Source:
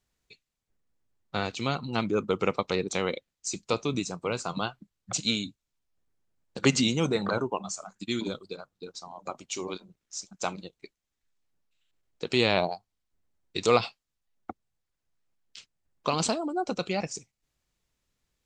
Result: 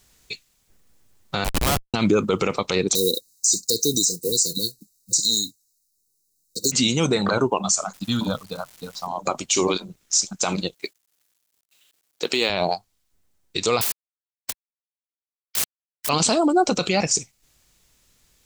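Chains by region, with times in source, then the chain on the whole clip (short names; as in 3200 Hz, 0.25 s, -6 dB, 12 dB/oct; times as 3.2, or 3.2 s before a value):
1.44–1.94 elliptic high-pass 700 Hz + Schmitt trigger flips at -31 dBFS
2.95–6.72 block floating point 7-bit + brick-wall FIR band-stop 520–3700 Hz + tone controls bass -7 dB, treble +15 dB
7.92–9.06 LPF 2700 Hz + fixed phaser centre 900 Hz, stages 4 + crackle 570/s -55 dBFS
10.74–12.5 HPF 270 Hz + companded quantiser 8-bit
13.81–16.09 high shelf 6000 Hz -11.5 dB + companded quantiser 4-bit + spectral compressor 10:1
whole clip: high shelf 4100 Hz +9 dB; vocal rider 2 s; maximiser +16.5 dB; gain -8 dB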